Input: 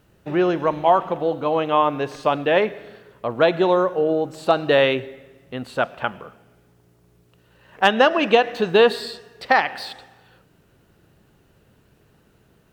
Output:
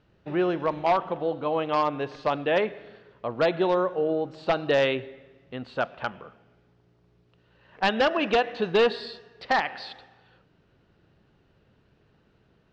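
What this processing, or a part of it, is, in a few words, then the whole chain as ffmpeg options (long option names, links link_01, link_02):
synthesiser wavefolder: -af "aeval=exprs='0.355*(abs(mod(val(0)/0.355+3,4)-2)-1)':channel_layout=same,lowpass=frequency=5000:width=0.5412,lowpass=frequency=5000:width=1.3066,volume=-5.5dB"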